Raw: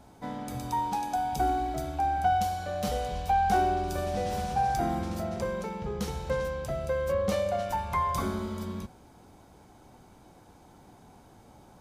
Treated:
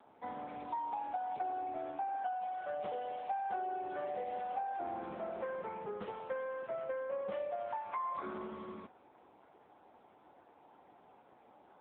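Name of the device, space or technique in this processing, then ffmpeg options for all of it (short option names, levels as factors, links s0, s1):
voicemail: -af "highpass=390,lowpass=2600,acompressor=threshold=0.0224:ratio=6,volume=0.841" -ar 8000 -c:a libopencore_amrnb -b:a 6700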